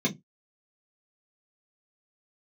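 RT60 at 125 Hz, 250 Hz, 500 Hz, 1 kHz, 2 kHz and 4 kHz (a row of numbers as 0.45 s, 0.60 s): 0.20 s, 0.25 s, 0.20 s, 0.15 s, 0.15 s, 0.10 s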